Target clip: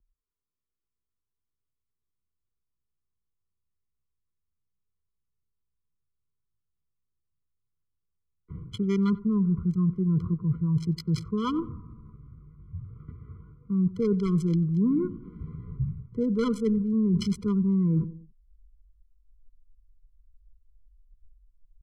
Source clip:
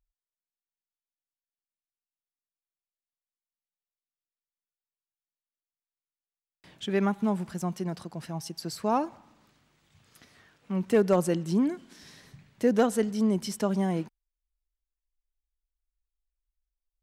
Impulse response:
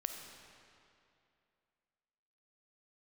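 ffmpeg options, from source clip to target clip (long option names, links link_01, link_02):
-filter_complex "[0:a]atempo=0.78,acrossover=split=210|1100[link_01][link_02][link_03];[link_01]asubboost=boost=10.5:cutoff=160[link_04];[link_03]acrusher=bits=4:mix=0:aa=0.5[link_05];[link_04][link_02][link_05]amix=inputs=3:normalize=0,asplit=2[link_06][link_07];[link_07]adelay=92,lowpass=frequency=950:poles=1,volume=-20dB,asplit=2[link_08][link_09];[link_09]adelay=92,lowpass=frequency=950:poles=1,volume=0.42,asplit=2[link_10][link_11];[link_11]adelay=92,lowpass=frequency=950:poles=1,volume=0.42[link_12];[link_06][link_08][link_10][link_12]amix=inputs=4:normalize=0,areverse,acompressor=threshold=-31dB:ratio=6,areverse,lowpass=4500,highshelf=frequency=2500:gain=8.5,afftfilt=real='re*eq(mod(floor(b*sr/1024/490),2),0)':imag='im*eq(mod(floor(b*sr/1024/490),2),0)':win_size=1024:overlap=0.75,volume=8.5dB"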